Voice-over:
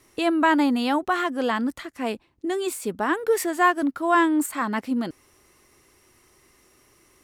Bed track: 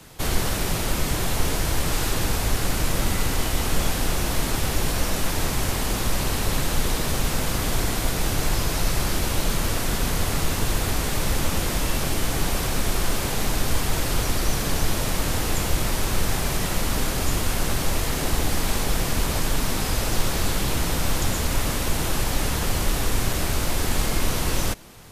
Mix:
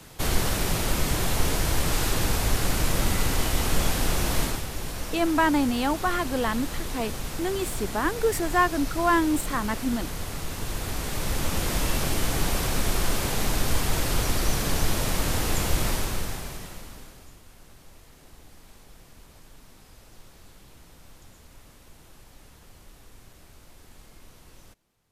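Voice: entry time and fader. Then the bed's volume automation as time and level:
4.95 s, -2.5 dB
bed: 4.43 s -1 dB
4.66 s -9.5 dB
10.45 s -9.5 dB
11.78 s -1.5 dB
15.9 s -1.5 dB
17.39 s -27.5 dB

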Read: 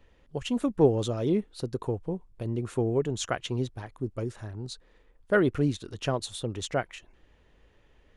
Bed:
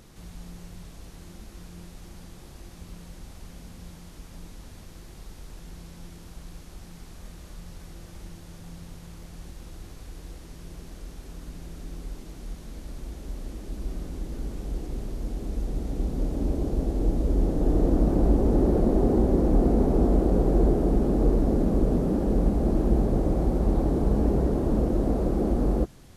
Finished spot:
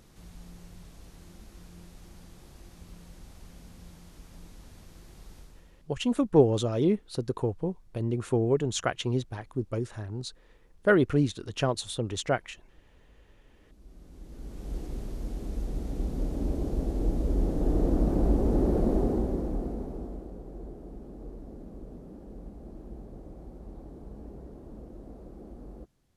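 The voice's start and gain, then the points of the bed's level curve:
5.55 s, +1.5 dB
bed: 5.39 s -5.5 dB
5.97 s -26.5 dB
13.48 s -26.5 dB
14.75 s -3.5 dB
18.95 s -3.5 dB
20.38 s -21.5 dB

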